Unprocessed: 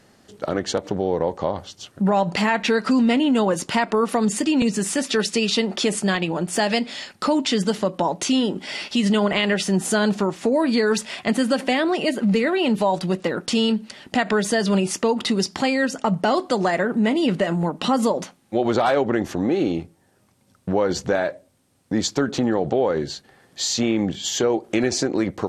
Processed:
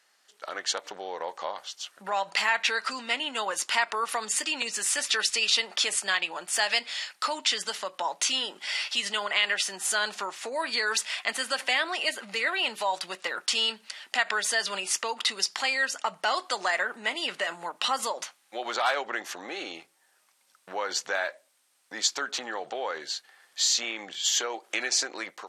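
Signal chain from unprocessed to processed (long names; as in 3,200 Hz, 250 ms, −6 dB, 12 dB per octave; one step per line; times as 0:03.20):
high-pass filter 1,200 Hz 12 dB per octave
automatic gain control gain up to 7.5 dB
level −6.5 dB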